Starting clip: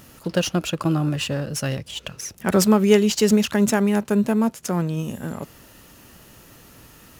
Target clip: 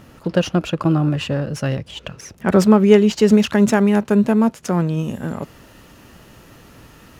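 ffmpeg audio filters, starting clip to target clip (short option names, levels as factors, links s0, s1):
-af "asetnsamples=n=441:p=0,asendcmd='3.31 lowpass f 3400',lowpass=f=1900:p=1,volume=1.68"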